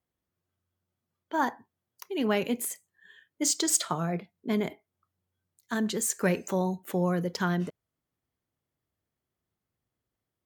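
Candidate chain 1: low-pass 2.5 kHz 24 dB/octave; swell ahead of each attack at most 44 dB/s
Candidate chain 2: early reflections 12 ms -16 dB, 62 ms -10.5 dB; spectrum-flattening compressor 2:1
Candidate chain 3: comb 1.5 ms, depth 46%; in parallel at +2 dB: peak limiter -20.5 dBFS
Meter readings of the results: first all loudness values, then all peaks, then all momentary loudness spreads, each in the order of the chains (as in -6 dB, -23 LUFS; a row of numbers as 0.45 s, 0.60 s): -29.5 LUFS, -31.0 LUFS, -23.5 LUFS; -9.5 dBFS, -9.5 dBFS, -7.0 dBFS; 20 LU, 14 LU, 8 LU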